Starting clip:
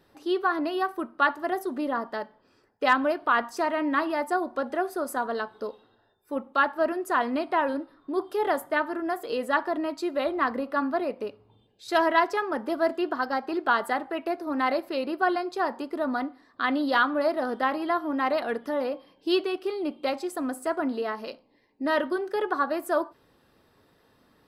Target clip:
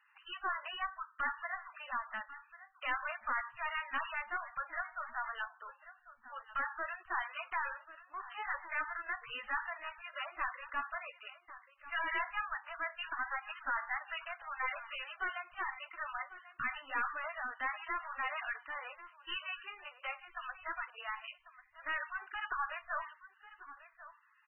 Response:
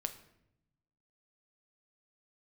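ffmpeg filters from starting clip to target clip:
-filter_complex "[0:a]highpass=frequency=1200:width=0.5412,highpass=frequency=1200:width=1.3066,asettb=1/sr,asplit=3[link_01][link_02][link_03];[link_01]atrim=end=8.614[link_04];[link_02]atrim=start=8.61:end=9.56,asetpts=PTS-STARTPTS,afade=type=in:duration=0.004:curve=qsin,afade=type=out:start_time=0.946:duration=0.004:curve=qsin,highshelf=frequency=2400:gain=6.5[link_05];[link_03]atrim=start=9.556[link_06];[link_04][link_05]acrossfade=duration=0.004:curve1=hsin:curve2=qsin[link_07];[link_07][link_06]acrossfade=duration=0.004:curve1=qsin:curve2=hsin,asettb=1/sr,asplit=3[link_08][link_09][link_10];[link_08]atrim=end=15.664[link_11];[link_09]atrim=start=15.66:end=16.26,asetpts=PTS-STARTPTS,afade=type=in:duration=0.004:curve=qsin,afade=type=out:start_time=0.596:duration=0.004:curve=qsin,aecho=1:1:3.8:0.85,atrim=end_sample=26460[link_12];[link_10]atrim=start=16.256[link_13];[link_11][link_12]acrossfade=duration=0.004:curve1=hsin:curve2=qsin[link_14];[link_14][link_13]acrossfade=duration=0.004:curve1=qsin:curve2=hsin,asettb=1/sr,asplit=3[link_15][link_16][link_17];[link_15]atrim=end=22.014[link_18];[link_16]atrim=start=22.01:end=22.48,asetpts=PTS-STARTPTS,afade=type=in:duration=0.004:curve=qsin,afade=type=out:start_time=0.466:duration=0.004:curve=qsin,acrusher=bits=5:mode=log:mix=0:aa=0.000001[link_19];[link_17]atrim=start=22.476[link_20];[link_18][link_19]acrossfade=duration=0.004:curve1=hsin:curve2=qsin[link_21];[link_21][link_20]acrossfade=duration=0.004:curve1=qsin:curve2=hsin,aeval=exprs='(tanh(44.7*val(0)+0.25)-tanh(0.25))/44.7':channel_layout=same,aecho=1:1:1093:0.168,volume=1.5dB" -ar 22050 -c:a libmp3lame -b:a 8k

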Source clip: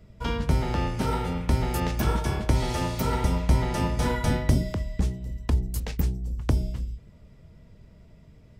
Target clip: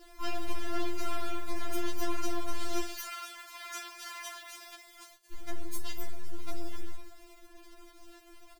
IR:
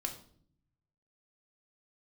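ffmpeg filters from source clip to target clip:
-filter_complex "[0:a]aeval=exprs='(tanh(50.1*val(0)+0.75)-tanh(0.75))/50.1':channel_layout=same,asettb=1/sr,asplit=3[link_01][link_02][link_03];[link_01]atrim=end=2.824[link_04];[link_02]atrim=start=2.82:end=5.32,asetpts=PTS-STARTPTS,afade=type=in:duration=0.004:curve=qsin,afade=type=out:start_time=2.496:duration=0.004:curve=qsin,highpass=1300[link_05];[link_03]atrim=start=5.316[link_06];[link_04][link_05]acrossfade=duration=0.004:curve1=hsin:curve2=qsin[link_07];[link_07][link_06]acrossfade=duration=0.004:curve1=qsin:curve2=hsin,asplit=2[link_08][link_09];[link_09]adelay=64,lowpass=frequency=2400:poles=1,volume=-12.5dB,asplit=2[link_10][link_11];[link_11]adelay=64,lowpass=frequency=2400:poles=1,volume=0.49,asplit=2[link_12][link_13];[link_13]adelay=64,lowpass=frequency=2400:poles=1,volume=0.49,asplit=2[link_14][link_15];[link_15]adelay=64,lowpass=frequency=2400:poles=1,volume=0.49,asplit=2[link_16][link_17];[link_17]adelay=64,lowpass=frequency=2400:poles=1,volume=0.49[link_18];[link_08][link_10][link_12][link_14][link_16][link_18]amix=inputs=6:normalize=0,acrusher=bits=8:mix=0:aa=0.000001,afftfilt=real='re*4*eq(mod(b,16),0)':imag='im*4*eq(mod(b,16),0)':win_size=2048:overlap=0.75,volume=5.5dB"

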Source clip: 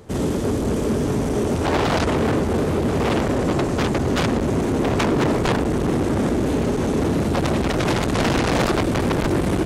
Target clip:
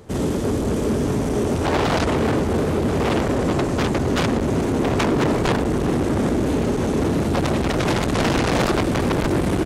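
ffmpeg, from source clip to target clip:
ffmpeg -i in.wav -af "aecho=1:1:384:0.141" out.wav

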